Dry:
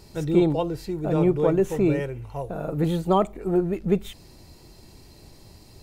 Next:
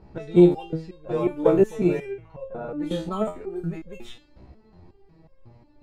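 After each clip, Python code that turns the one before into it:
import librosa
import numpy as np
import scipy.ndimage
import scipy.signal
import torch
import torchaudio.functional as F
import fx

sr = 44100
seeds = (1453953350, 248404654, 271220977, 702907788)

y = fx.env_lowpass(x, sr, base_hz=1300.0, full_db=-17.0)
y = fx.resonator_held(y, sr, hz=5.5, low_hz=65.0, high_hz=540.0)
y = y * librosa.db_to_amplitude(9.0)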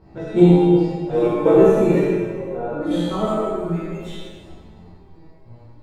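y = x + 10.0 ** (-8.5 / 20.0) * np.pad(x, (int(86 * sr / 1000.0), 0))[:len(x)]
y = fx.rev_plate(y, sr, seeds[0], rt60_s=1.8, hf_ratio=0.75, predelay_ms=0, drr_db=-7.0)
y = y * librosa.db_to_amplitude(-1.5)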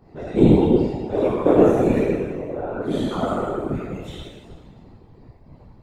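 y = fx.whisperise(x, sr, seeds[1])
y = y * librosa.db_to_amplitude(-2.0)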